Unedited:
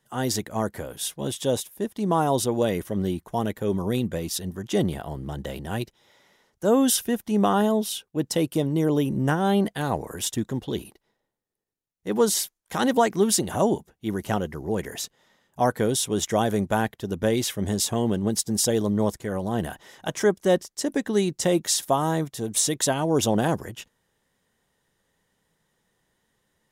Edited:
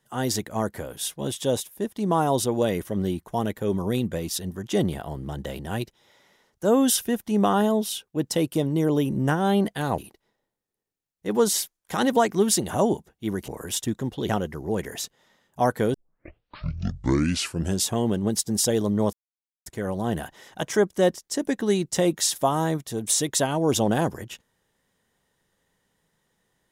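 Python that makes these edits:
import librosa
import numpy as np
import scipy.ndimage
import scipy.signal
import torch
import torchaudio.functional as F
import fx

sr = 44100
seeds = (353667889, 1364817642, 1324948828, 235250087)

y = fx.edit(x, sr, fx.move(start_s=9.98, length_s=0.81, to_s=14.29),
    fx.tape_start(start_s=15.94, length_s=1.93),
    fx.insert_silence(at_s=19.13, length_s=0.53), tone=tone)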